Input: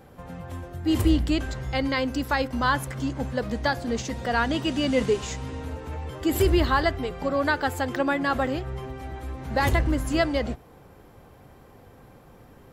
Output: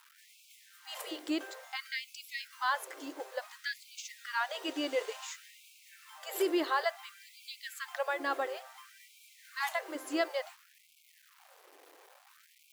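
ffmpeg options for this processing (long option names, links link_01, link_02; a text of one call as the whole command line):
ffmpeg -i in.wav -af "acrusher=bits=7:mix=0:aa=0.000001,afftfilt=real='re*gte(b*sr/1024,270*pow(2200/270,0.5+0.5*sin(2*PI*0.57*pts/sr)))':imag='im*gte(b*sr/1024,270*pow(2200/270,0.5+0.5*sin(2*PI*0.57*pts/sr)))':win_size=1024:overlap=0.75,volume=-7.5dB" out.wav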